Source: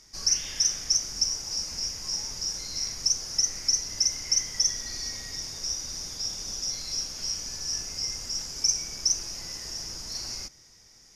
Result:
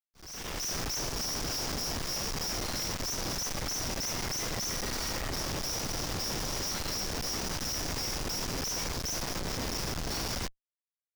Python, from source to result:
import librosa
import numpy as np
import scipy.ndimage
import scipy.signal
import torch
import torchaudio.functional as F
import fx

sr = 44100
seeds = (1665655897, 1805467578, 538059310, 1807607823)

y = fx.schmitt(x, sr, flips_db=-35.5)
y = fx.auto_swell(y, sr, attack_ms=545.0)
y = y * 10.0 ** (-2.5 / 20.0)